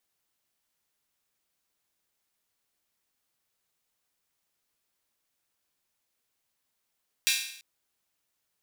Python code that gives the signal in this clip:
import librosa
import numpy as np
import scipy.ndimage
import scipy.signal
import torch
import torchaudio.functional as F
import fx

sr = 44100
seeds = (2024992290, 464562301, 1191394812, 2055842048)

y = fx.drum_hat_open(sr, length_s=0.34, from_hz=2600.0, decay_s=0.67)